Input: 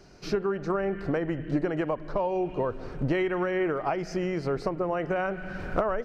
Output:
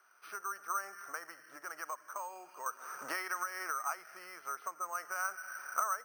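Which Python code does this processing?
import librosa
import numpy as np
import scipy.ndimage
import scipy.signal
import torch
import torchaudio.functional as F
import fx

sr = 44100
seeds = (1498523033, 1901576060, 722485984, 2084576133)

y = fx.ladder_bandpass(x, sr, hz=1400.0, resonance_pct=65)
y = np.repeat(y[::6], 6)[:len(y)]
y = fx.band_squash(y, sr, depth_pct=100, at=(2.66, 3.89))
y = y * 10.0 ** (3.0 / 20.0)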